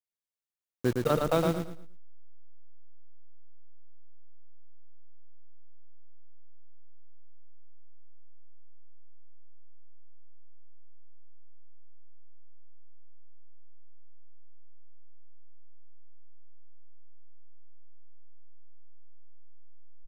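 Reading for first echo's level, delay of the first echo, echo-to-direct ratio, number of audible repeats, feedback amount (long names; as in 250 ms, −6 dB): −4.0 dB, 112 ms, −3.5 dB, 3, 29%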